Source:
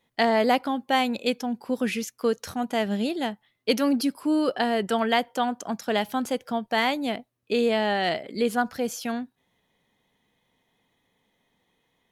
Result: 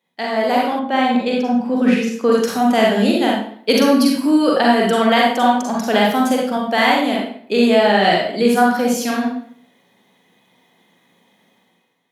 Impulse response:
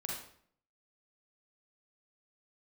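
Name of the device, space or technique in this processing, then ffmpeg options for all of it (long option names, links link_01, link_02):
far laptop microphone: -filter_complex "[1:a]atrim=start_sample=2205[link_01];[0:a][link_01]afir=irnorm=-1:irlink=0,highpass=frequency=160:width=0.5412,highpass=frequency=160:width=1.3066,dynaudnorm=framelen=100:gausssize=11:maxgain=13dB,asettb=1/sr,asplit=3[link_02][link_03][link_04];[link_02]atrim=end=0.794[link_05];[link_03]atrim=start=0.79:end=2.32,asetpts=PTS-STARTPTS,afade=type=in:duration=0.004:curve=qsin,afade=type=out:start_time=1.526:duration=0.004:curve=qsin,aemphasis=mode=reproduction:type=75kf[link_06];[link_04]atrim=start=2.316[link_07];[link_05][link_06]acrossfade=duration=0.004:curve1=hsin:curve2=qsin[link_08];[link_08][link_07]acrossfade=duration=0.004:curve1=qsin:curve2=hsin"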